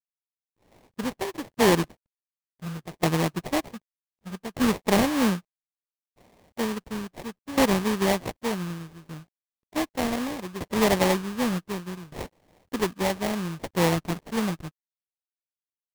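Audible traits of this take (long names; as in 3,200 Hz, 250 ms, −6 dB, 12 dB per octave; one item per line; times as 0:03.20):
a quantiser's noise floor 12 bits, dither none
tremolo saw down 0.66 Hz, depth 85%
aliases and images of a low sample rate 1,400 Hz, jitter 20%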